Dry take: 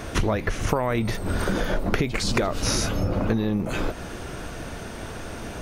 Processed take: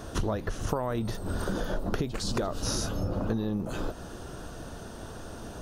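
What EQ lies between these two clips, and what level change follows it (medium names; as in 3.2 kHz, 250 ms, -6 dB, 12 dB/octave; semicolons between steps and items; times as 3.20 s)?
peaking EQ 2.2 kHz -14.5 dB 0.46 oct; -6.0 dB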